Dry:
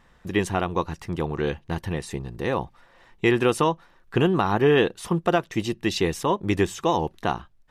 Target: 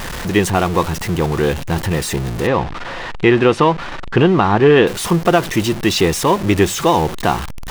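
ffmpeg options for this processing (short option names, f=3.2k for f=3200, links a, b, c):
-filter_complex "[0:a]aeval=exprs='val(0)+0.5*0.0422*sgn(val(0))':c=same,asplit=3[a][b][c];[a]afade=t=out:st=2.46:d=0.02[d];[b]lowpass=3.6k,afade=t=in:st=2.46:d=0.02,afade=t=out:st=4.86:d=0.02[e];[c]afade=t=in:st=4.86:d=0.02[f];[d][e][f]amix=inputs=3:normalize=0,volume=7dB"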